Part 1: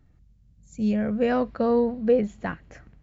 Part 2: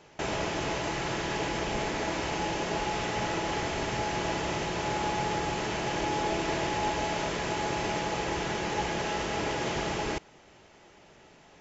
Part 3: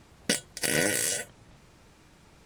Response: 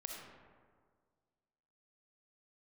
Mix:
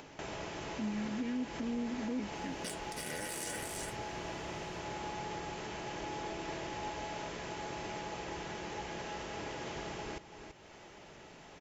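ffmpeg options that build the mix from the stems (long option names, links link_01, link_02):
-filter_complex "[0:a]asplit=3[link_01][link_02][link_03];[link_01]bandpass=frequency=270:width_type=q:width=8,volume=0dB[link_04];[link_02]bandpass=frequency=2290:width_type=q:width=8,volume=-6dB[link_05];[link_03]bandpass=frequency=3010:width_type=q:width=8,volume=-9dB[link_06];[link_04][link_05][link_06]amix=inputs=3:normalize=0,volume=1.5dB[link_07];[1:a]volume=-11dB,asplit=2[link_08][link_09];[link_09]volume=-14dB[link_10];[2:a]alimiter=limit=-20.5dB:level=0:latency=1,adelay=2350,volume=-5.5dB,asplit=2[link_11][link_12];[link_12]volume=-5dB[link_13];[link_10][link_13]amix=inputs=2:normalize=0,aecho=0:1:333:1[link_14];[link_07][link_08][link_11][link_14]amix=inputs=4:normalize=0,acompressor=mode=upward:threshold=-41dB:ratio=2.5,alimiter=level_in=5dB:limit=-24dB:level=0:latency=1:release=128,volume=-5dB"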